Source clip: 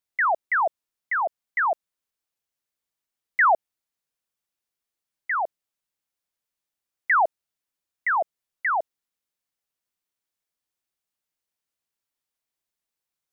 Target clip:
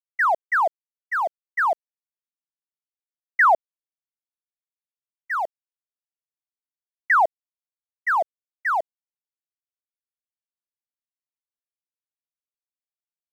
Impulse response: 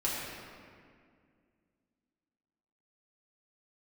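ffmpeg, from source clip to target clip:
-af "aeval=exprs='sgn(val(0))*max(abs(val(0))-0.00422,0)':channel_layout=same,agate=range=-33dB:threshold=-23dB:ratio=3:detection=peak,volume=2.5dB"

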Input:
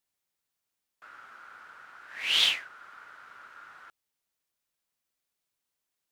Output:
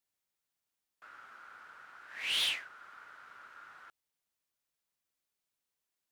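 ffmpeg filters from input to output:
ffmpeg -i in.wav -af "asoftclip=type=tanh:threshold=-23dB,volume=-3.5dB" out.wav

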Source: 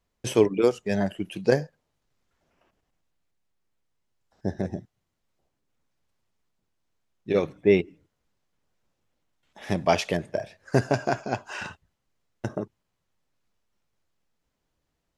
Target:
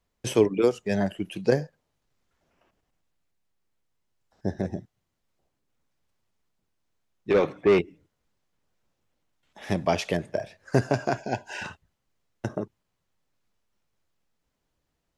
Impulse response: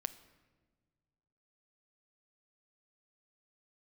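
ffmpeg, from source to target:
-filter_complex "[0:a]acrossover=split=470[link_01][link_02];[link_02]acompressor=threshold=-23dB:ratio=4[link_03];[link_01][link_03]amix=inputs=2:normalize=0,asettb=1/sr,asplit=3[link_04][link_05][link_06];[link_04]atrim=end=7.294[link_07];[link_05]atrim=start=7.29:end=7.79,asetpts=PTS-STARTPTS,afade=type=in:duration=0.004:curve=qsin,afade=type=out:start_time=0.496:duration=0.004:curve=qsin,asplit=2[link_08][link_09];[link_09]highpass=frequency=720:poles=1,volume=19dB,asoftclip=type=tanh:threshold=-12dB[link_10];[link_08][link_10]amix=inputs=2:normalize=0,lowpass=frequency=1700:poles=1,volume=-6dB[link_11];[link_06]atrim=start=7.786[link_12];[link_07][link_11]acrossfade=duration=0.004:curve1=hsin:curve2=qsin[link_13];[link_13][link_12]acrossfade=duration=0.004:curve1=qsin:curve2=hsin,asettb=1/sr,asplit=3[link_14][link_15][link_16];[link_14]atrim=end=11.174[link_17];[link_15]atrim=start=11.17:end=11.64,asetpts=PTS-STARTPTS,afade=type=in:duration=0.004:curve=qsin,afade=type=out:start_time=0.466:duration=0.004:curve=qsin,asuperstop=centerf=1200:order=12:qfactor=2.7[link_18];[link_16]atrim=start=11.636[link_19];[link_17][link_18]acrossfade=duration=0.004:curve1=hsin:curve2=qsin[link_20];[link_20][link_19]acrossfade=duration=0.004:curve1=qsin:curve2=hsin"

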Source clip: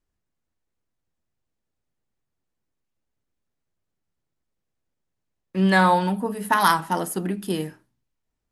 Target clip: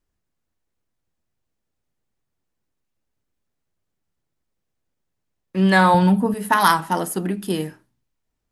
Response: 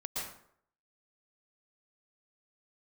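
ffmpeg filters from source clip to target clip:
-filter_complex "[0:a]asettb=1/sr,asplit=3[link_01][link_02][link_03];[link_01]atrim=end=5.944[link_04];[link_02]atrim=start=5.94:end=6.34,asetpts=PTS-STARTPTS,afade=type=in:duration=0.004:curve=qsin,afade=type=out:start_time=0.396:duration=0.004:curve=qsin,equalizer=frequency=100:width=0.76:gain=14.5[link_05];[link_03]atrim=start=6.336[link_06];[link_04][link_05]acrossfade=duration=0.004:curve1=hsin:curve2=qsin[link_07];[link_07][link_06]acrossfade=duration=0.004:curve1=qsin:curve2=hsin,volume=2.5dB"

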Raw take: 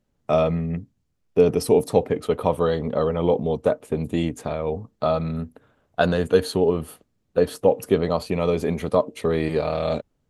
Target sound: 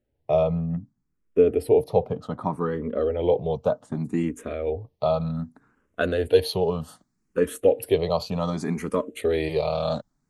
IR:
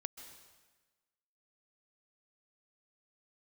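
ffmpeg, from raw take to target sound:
-filter_complex "[0:a]asetnsamples=nb_out_samples=441:pad=0,asendcmd='3.19 highshelf g -2.5;6.3 highshelf g 3.5',highshelf=frequency=2300:gain=-10,asplit=2[link_01][link_02];[link_02]afreqshift=0.65[link_03];[link_01][link_03]amix=inputs=2:normalize=1"

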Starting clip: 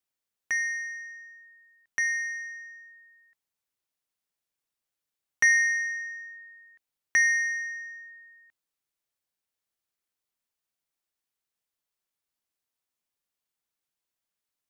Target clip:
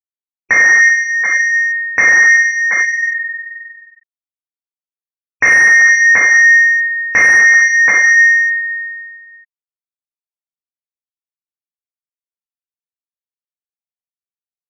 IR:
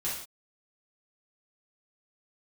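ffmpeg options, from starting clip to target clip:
-filter_complex "[0:a]lowpass=frequency=1400:poles=1,bandreject=frequency=50:width_type=h:width=6,bandreject=frequency=100:width_type=h:width=6,aecho=1:1:97|371|730:0.501|0.126|0.282[link_01];[1:a]atrim=start_sample=2205,asetrate=27342,aresample=44100[link_02];[link_01][link_02]afir=irnorm=-1:irlink=0,asplit=3[link_03][link_04][link_05];[link_03]afade=type=out:start_time=2.82:duration=0.02[link_06];[link_04]flanger=delay=5:depth=3.5:regen=-43:speed=1.6:shape=triangular,afade=type=in:start_time=2.82:duration=0.02,afade=type=out:start_time=5.45:duration=0.02[link_07];[link_05]afade=type=in:start_time=5.45:duration=0.02[link_08];[link_06][link_07][link_08]amix=inputs=3:normalize=0,asplit=2[link_09][link_10];[link_10]highpass=frequency=720:poles=1,volume=13dB,asoftclip=type=tanh:threshold=-13.5dB[link_11];[link_09][link_11]amix=inputs=2:normalize=0,lowpass=frequency=1000:poles=1,volume=-6dB,afftfilt=real='re*gte(hypot(re,im),0.00447)':imag='im*gte(hypot(re,im),0.00447)':win_size=1024:overlap=0.75,equalizer=frequency=410:width=1.6:gain=2.5,alimiter=level_in=29.5dB:limit=-1dB:release=50:level=0:latency=1,volume=-1.5dB"

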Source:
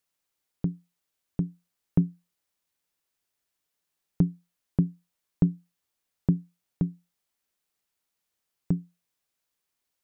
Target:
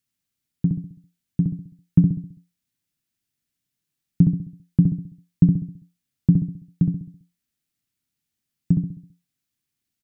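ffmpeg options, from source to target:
ffmpeg -i in.wav -filter_complex "[0:a]equalizer=frequency=125:width_type=o:width=1:gain=9,equalizer=frequency=250:width_type=o:width=1:gain=7,equalizer=frequency=500:width_type=o:width=1:gain=-10,equalizer=frequency=1000:width_type=o:width=1:gain=-8,asplit=2[link_01][link_02];[link_02]adelay=66,lowpass=frequency=870:poles=1,volume=-3dB,asplit=2[link_03][link_04];[link_04]adelay=66,lowpass=frequency=870:poles=1,volume=0.47,asplit=2[link_05][link_06];[link_06]adelay=66,lowpass=frequency=870:poles=1,volume=0.47,asplit=2[link_07][link_08];[link_08]adelay=66,lowpass=frequency=870:poles=1,volume=0.47,asplit=2[link_09][link_10];[link_10]adelay=66,lowpass=frequency=870:poles=1,volume=0.47,asplit=2[link_11][link_12];[link_12]adelay=66,lowpass=frequency=870:poles=1,volume=0.47[link_13];[link_01][link_03][link_05][link_07][link_09][link_11][link_13]amix=inputs=7:normalize=0" out.wav

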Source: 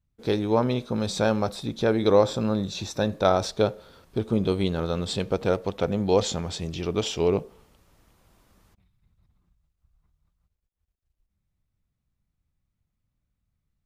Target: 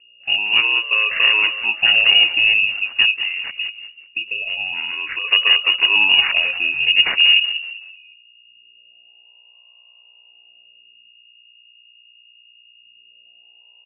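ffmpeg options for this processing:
ffmpeg -i in.wav -filter_complex "[0:a]afwtdn=0.0178,agate=range=-33dB:threshold=-45dB:ratio=3:detection=peak,dynaudnorm=framelen=150:gausssize=13:maxgain=14dB,alimiter=limit=-8.5dB:level=0:latency=1:release=64,asettb=1/sr,asplit=3[link_01][link_02][link_03];[link_01]atrim=end=3.214[link_04];[link_02]atrim=start=3.21:end=5.24,asetpts=PTS-STARTPTS,afade=type=in:duration=0.004:curve=qsin,afade=type=out:start_time=2.026:duration=0.004:curve=qsin,acompressor=threshold=-27dB:ratio=6[link_05];[link_03]atrim=start=5.236[link_06];[link_04][link_05]acrossfade=duration=0.004:curve1=hsin:curve2=qsin[link_07];[link_07][link_06]acrossfade=duration=0.004:curve1=qsin:curve2=hsin,afreqshift=-480,aeval=exprs='val(0)+0.002*(sin(2*PI*60*n/s)+sin(2*PI*2*60*n/s)/2+sin(2*PI*3*60*n/s)/3+sin(2*PI*4*60*n/s)/4+sin(2*PI*5*60*n/s)/5)':channel_layout=same,acrusher=samples=16:mix=1:aa=0.000001:lfo=1:lforange=9.6:lforate=0.23,asplit=5[link_08][link_09][link_10][link_11][link_12];[link_09]adelay=188,afreqshift=-110,volume=-11.5dB[link_13];[link_10]adelay=376,afreqshift=-220,volume=-20.1dB[link_14];[link_11]adelay=564,afreqshift=-330,volume=-28.8dB[link_15];[link_12]adelay=752,afreqshift=-440,volume=-37.4dB[link_16];[link_08][link_13][link_14][link_15][link_16]amix=inputs=5:normalize=0,lowpass=frequency=2500:width_type=q:width=0.5098,lowpass=frequency=2500:width_type=q:width=0.6013,lowpass=frequency=2500:width_type=q:width=0.9,lowpass=frequency=2500:width_type=q:width=2.563,afreqshift=-2900,volume=4.5dB" out.wav

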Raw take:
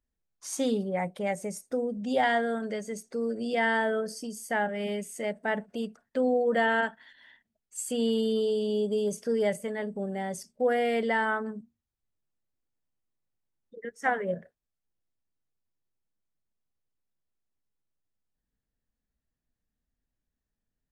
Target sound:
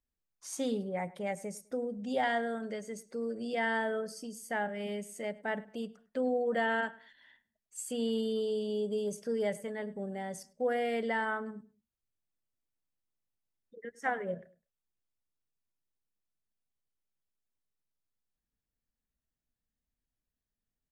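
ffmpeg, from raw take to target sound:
ffmpeg -i in.wav -filter_complex "[0:a]asplit=2[link_01][link_02];[link_02]adelay=102,lowpass=frequency=3500:poles=1,volume=-20dB,asplit=2[link_03][link_04];[link_04]adelay=102,lowpass=frequency=3500:poles=1,volume=0.31[link_05];[link_01][link_03][link_05]amix=inputs=3:normalize=0,volume=-5.5dB" out.wav

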